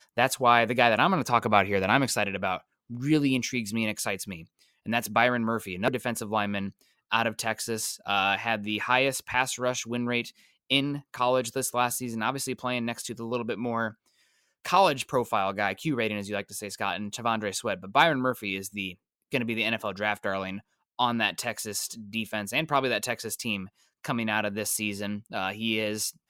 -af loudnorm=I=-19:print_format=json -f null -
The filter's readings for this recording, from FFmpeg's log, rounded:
"input_i" : "-27.6",
"input_tp" : "-5.2",
"input_lra" : "4.0",
"input_thresh" : "-37.9",